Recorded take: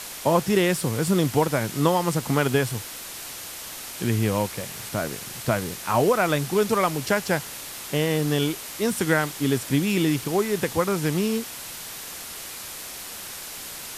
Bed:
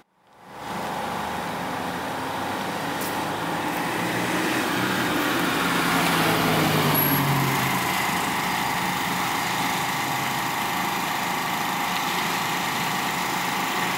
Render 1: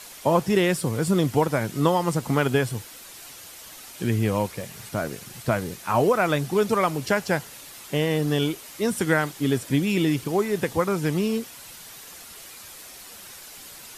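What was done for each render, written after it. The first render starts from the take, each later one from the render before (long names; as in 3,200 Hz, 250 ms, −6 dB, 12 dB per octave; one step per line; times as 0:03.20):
broadband denoise 8 dB, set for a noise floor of −37 dBFS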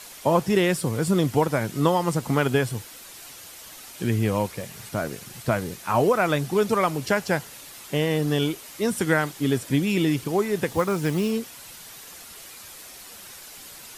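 0:10.68–0:11.31: log-companded quantiser 6 bits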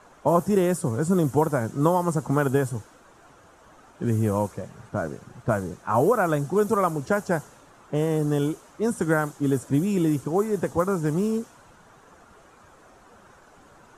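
low-pass that shuts in the quiet parts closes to 2,400 Hz, open at −16.5 dBFS
flat-topped bell 3,100 Hz −13.5 dB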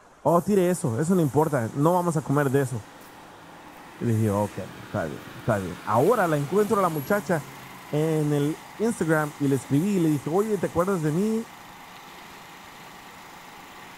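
mix in bed −19.5 dB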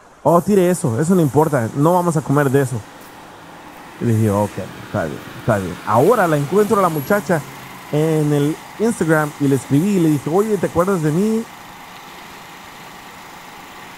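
level +7.5 dB
brickwall limiter −1 dBFS, peak gain reduction 1.5 dB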